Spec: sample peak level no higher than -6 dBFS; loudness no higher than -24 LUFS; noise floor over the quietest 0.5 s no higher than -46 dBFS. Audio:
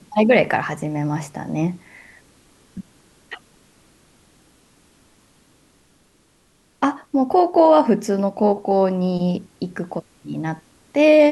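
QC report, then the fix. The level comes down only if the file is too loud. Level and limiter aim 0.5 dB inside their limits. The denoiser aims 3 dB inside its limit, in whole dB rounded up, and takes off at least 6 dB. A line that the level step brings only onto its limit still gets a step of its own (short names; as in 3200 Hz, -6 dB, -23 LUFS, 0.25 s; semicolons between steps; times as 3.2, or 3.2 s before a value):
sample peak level -2.0 dBFS: fail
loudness -19.5 LUFS: fail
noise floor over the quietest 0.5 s -59 dBFS: OK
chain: gain -5 dB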